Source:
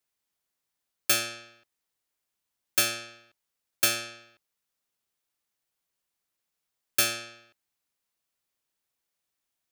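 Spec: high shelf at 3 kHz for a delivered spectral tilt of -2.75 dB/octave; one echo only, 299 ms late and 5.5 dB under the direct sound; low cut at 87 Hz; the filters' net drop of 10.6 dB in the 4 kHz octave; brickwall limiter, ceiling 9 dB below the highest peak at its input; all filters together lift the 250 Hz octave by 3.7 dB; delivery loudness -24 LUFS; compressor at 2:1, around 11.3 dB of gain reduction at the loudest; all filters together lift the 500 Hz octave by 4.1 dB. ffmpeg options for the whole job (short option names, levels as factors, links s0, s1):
-af "highpass=87,equalizer=f=250:t=o:g=3,equalizer=f=500:t=o:g=5,highshelf=f=3000:g=-7,equalizer=f=4000:t=o:g=-8,acompressor=threshold=0.00562:ratio=2,alimiter=level_in=2.66:limit=0.0631:level=0:latency=1,volume=0.376,aecho=1:1:299:0.531,volume=15"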